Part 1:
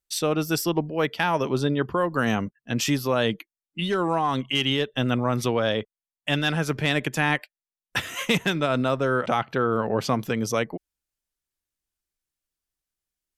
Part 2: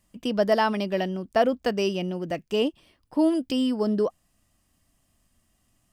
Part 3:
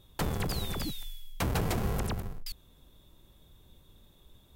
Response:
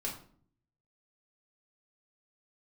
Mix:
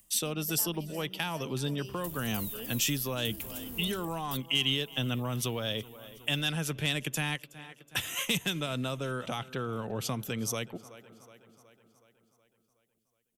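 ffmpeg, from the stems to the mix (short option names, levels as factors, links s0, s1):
-filter_complex "[0:a]volume=0.562,asplit=2[s0][s1];[s1]volume=0.0794[s2];[1:a]highshelf=f=9700:g=9,volume=0.119,asplit=2[s3][s4];[s4]volume=0.126[s5];[2:a]aemphasis=mode=production:type=50fm,adelay=1850,volume=0.15[s6];[s3][s6]amix=inputs=2:normalize=0,acompressor=mode=upward:threshold=0.00141:ratio=2.5,alimiter=level_in=3.35:limit=0.0631:level=0:latency=1:release=63,volume=0.299,volume=1[s7];[s2][s5]amix=inputs=2:normalize=0,aecho=0:1:370|740|1110|1480|1850|2220|2590|2960:1|0.56|0.314|0.176|0.0983|0.0551|0.0308|0.0173[s8];[s0][s7][s8]amix=inputs=3:normalize=0,acrossover=split=180|3000[s9][s10][s11];[s10]acompressor=threshold=0.0158:ratio=3[s12];[s9][s12][s11]amix=inputs=3:normalize=0,aexciter=amount=1.2:drive=7.4:freq=2600"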